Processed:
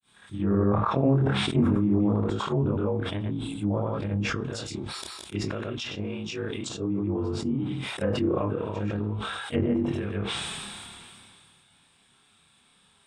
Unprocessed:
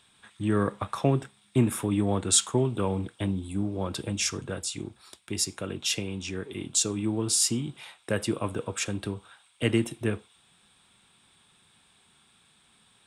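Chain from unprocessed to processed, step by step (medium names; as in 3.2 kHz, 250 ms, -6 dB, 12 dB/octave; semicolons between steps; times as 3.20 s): short-time spectra conjugated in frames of 59 ms; granulator 242 ms, grains 11 per s, pitch spread up and down by 0 st; low-pass that closes with the level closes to 880 Hz, closed at -29.5 dBFS; decay stretcher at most 23 dB/s; trim +6 dB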